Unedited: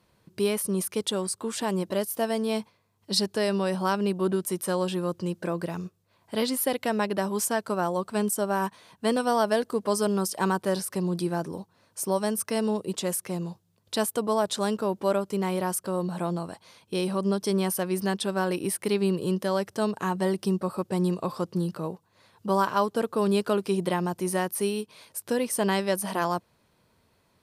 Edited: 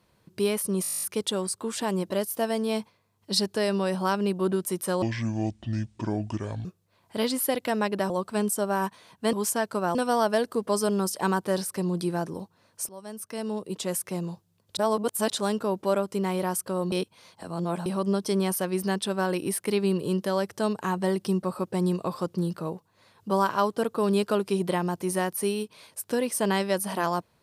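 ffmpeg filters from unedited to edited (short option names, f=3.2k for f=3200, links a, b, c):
-filter_complex "[0:a]asplit=21[a][b][c][d][e][f][g][h][i][j][k][l][m][n][o][p][q][r][s][t][u];[a]atrim=end=0.842[v];[b]atrim=start=0.818:end=0.842[w];[c]atrim=start=0.818:end=0.842[x];[d]atrim=start=0.818:end=0.842[y];[e]atrim=start=0.818:end=0.842[z];[f]atrim=start=0.818:end=0.842[aa];[g]atrim=start=0.818:end=0.842[ab];[h]atrim=start=0.818:end=0.842[ac];[i]atrim=start=0.818:end=0.842[ad];[j]atrim=start=0.818:end=0.842[ae];[k]atrim=start=0.818:end=4.824[af];[l]atrim=start=4.82:end=5.83,asetpts=PTS-STARTPTS,asetrate=27342,aresample=44100,atrim=end_sample=71840,asetpts=PTS-STARTPTS[ag];[m]atrim=start=5.826:end=7.282[ah];[n]atrim=start=7.898:end=9.132[ai];[o]atrim=start=7.278:end=7.902[aj];[p]atrim=start=9.128:end=12.07,asetpts=PTS-STARTPTS,afade=t=out:st=2.938:d=0.004:c=hsin:silence=0.0707946[ak];[q]atrim=start=12.07:end=13.952,asetpts=PTS-STARTPTS,afade=t=in:d=1.14:silence=0.0707946[al];[r]atrim=start=13.948:end=14.482,asetpts=PTS-STARTPTS,areverse[am];[s]atrim=start=14.478:end=16.102[an];[t]atrim=start=16.098:end=17.042,asetpts=PTS-STARTPTS,areverse[ao];[u]atrim=start=17.038[ap];[v][w]acrossfade=d=0.004:c1=hsin:c2=hsin[aq];[aq][x]acrossfade=d=0.004:c1=hsin:c2=hsin[ar];[ar][y]acrossfade=d=0.004:c1=hsin:c2=hsin[as];[as][z]acrossfade=d=0.004:c1=hsin:c2=hsin[at];[at][aa]acrossfade=d=0.004:c1=hsin:c2=hsin[au];[au][ab]acrossfade=d=0.004:c1=hsin:c2=hsin[av];[av][ac]acrossfade=d=0.004:c1=hsin:c2=hsin[aw];[aw][ad]acrossfade=d=0.004:c1=hsin:c2=hsin[ax];[ax][ae]acrossfade=d=0.004:c1=hsin:c2=hsin[ay];[ay][af]acrossfade=d=0.004:c1=hsin:c2=hsin[az];[az][ag]acrossfade=d=0.004:c1=hsin:c2=hsin[ba];[ba][ah]acrossfade=d=0.004:c1=hsin:c2=hsin[bb];[bb][ai]acrossfade=d=0.004:c1=hsin:c2=hsin[bc];[bc][aj]acrossfade=d=0.004:c1=hsin:c2=hsin[bd];[ak][al]concat=n=2:v=0:a=1[be];[bd][be]acrossfade=d=0.004:c1=hsin:c2=hsin[bf];[bf][am]acrossfade=d=0.004:c1=hsin:c2=hsin[bg];[bg][an]acrossfade=d=0.004:c1=hsin:c2=hsin[bh];[bh][ao]acrossfade=d=0.004:c1=hsin:c2=hsin[bi];[bi][ap]acrossfade=d=0.004:c1=hsin:c2=hsin"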